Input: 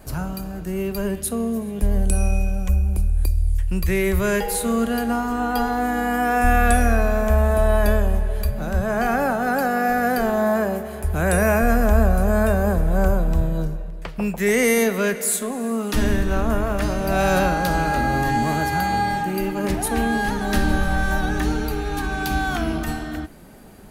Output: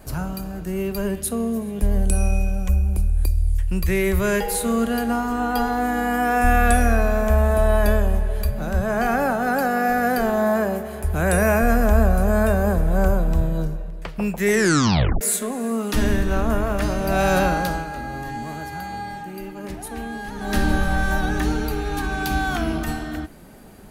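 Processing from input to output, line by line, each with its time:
14.51 s: tape stop 0.70 s
17.57–20.61 s: dip -10 dB, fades 0.29 s

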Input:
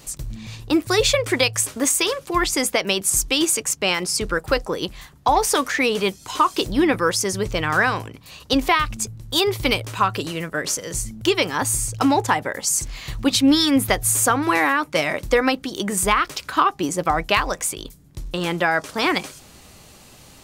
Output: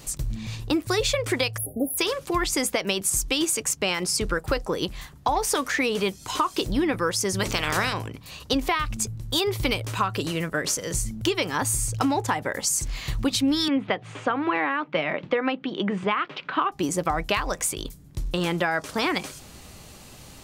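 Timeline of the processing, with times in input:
1.57–1.98 s: spectral selection erased 800–10000 Hz
7.39–7.92 s: spectral peaks clipped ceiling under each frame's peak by 21 dB
13.68–16.72 s: elliptic band-pass 160–3100 Hz, stop band 70 dB
whole clip: bass shelf 190 Hz +3.5 dB; compression 3:1, threshold -22 dBFS

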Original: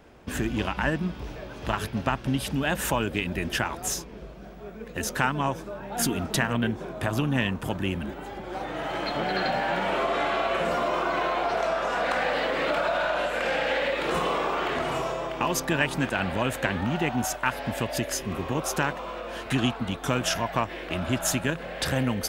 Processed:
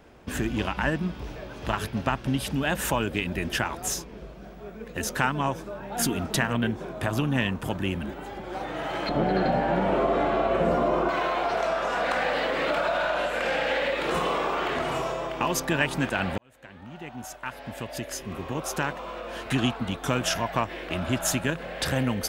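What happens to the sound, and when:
9.09–11.09 s: tilt shelf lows +8.5 dB, about 930 Hz
16.38–19.49 s: fade in

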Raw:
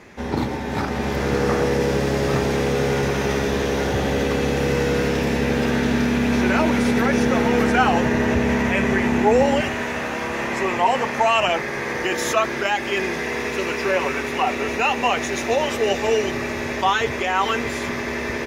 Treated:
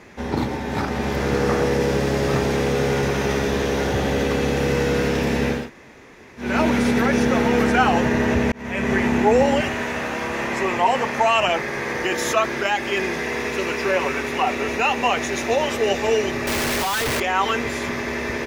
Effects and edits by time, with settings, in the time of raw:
5.59–6.48 s: room tone, crossfade 0.24 s
8.52–8.95 s: fade in linear
16.47–17.20 s: one-bit comparator

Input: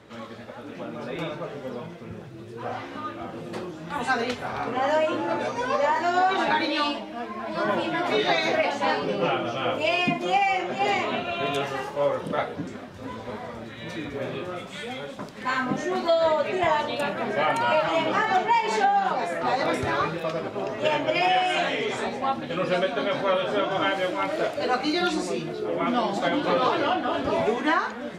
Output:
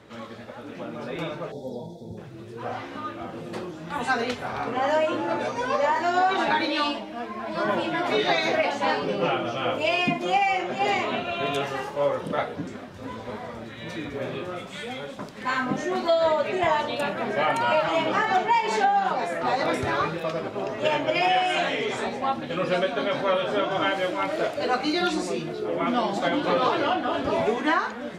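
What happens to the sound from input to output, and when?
1.51–2.18 s: time-frequency box 950–3300 Hz -28 dB

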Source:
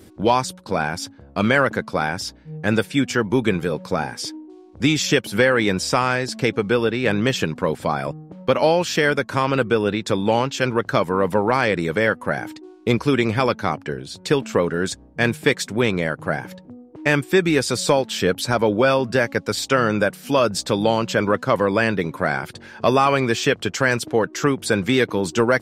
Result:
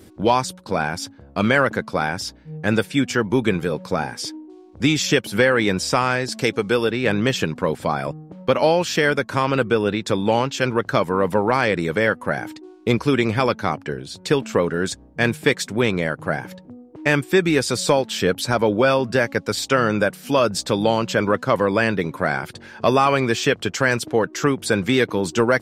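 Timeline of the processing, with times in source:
6.32–6.91 s: tone controls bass -3 dB, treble +7 dB

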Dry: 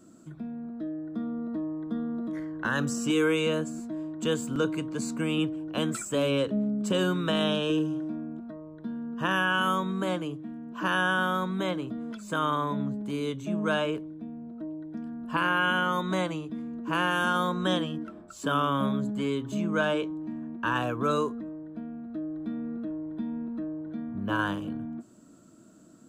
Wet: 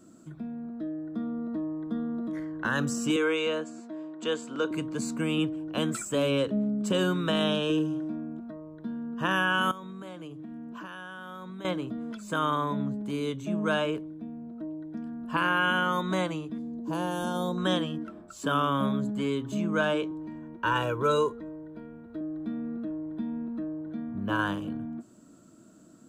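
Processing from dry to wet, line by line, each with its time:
3.16–4.71 s: band-pass 350–5700 Hz
9.71–11.65 s: compression 16:1, threshold -37 dBFS
16.58–17.58 s: high-order bell 1.8 kHz -14 dB
20.11–22.21 s: comb 2.1 ms

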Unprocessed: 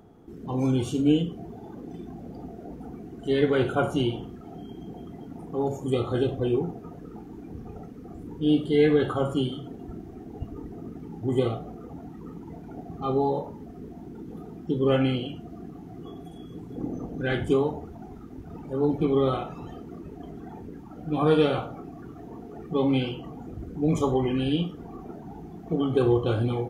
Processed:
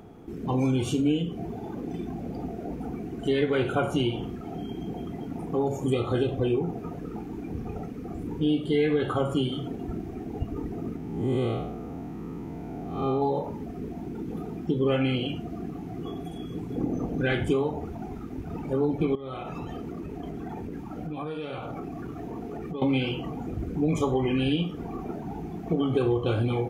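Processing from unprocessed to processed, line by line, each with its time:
10.96–13.22 s: spectral blur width 172 ms
19.15–22.82 s: compression 12:1, threshold -36 dBFS
whole clip: peaking EQ 2.4 kHz +6.5 dB 0.38 oct; compression 3:1, threshold -29 dBFS; trim +5.5 dB

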